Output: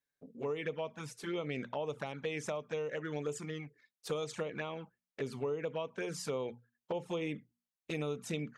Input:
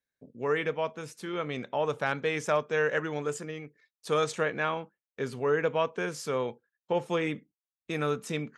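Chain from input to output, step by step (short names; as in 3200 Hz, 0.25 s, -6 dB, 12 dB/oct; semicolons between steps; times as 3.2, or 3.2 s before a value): notches 60/120/180/240 Hz; compressor 12:1, threshold -32 dBFS, peak gain reduction 11.5 dB; envelope flanger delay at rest 7 ms, full sweep at -32 dBFS; gain +1 dB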